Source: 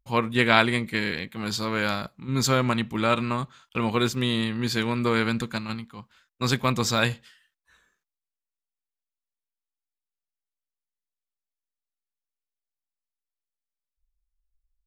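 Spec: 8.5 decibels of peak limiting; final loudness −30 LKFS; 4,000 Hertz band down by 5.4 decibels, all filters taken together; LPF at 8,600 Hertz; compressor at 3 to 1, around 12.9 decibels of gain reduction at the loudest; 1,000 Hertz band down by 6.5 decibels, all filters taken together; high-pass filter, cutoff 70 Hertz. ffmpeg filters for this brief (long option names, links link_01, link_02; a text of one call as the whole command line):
ffmpeg -i in.wav -af "highpass=70,lowpass=8600,equalizer=frequency=1000:width_type=o:gain=-8.5,equalizer=frequency=4000:width_type=o:gain=-6,acompressor=threshold=-37dB:ratio=3,volume=9.5dB,alimiter=limit=-19dB:level=0:latency=1" out.wav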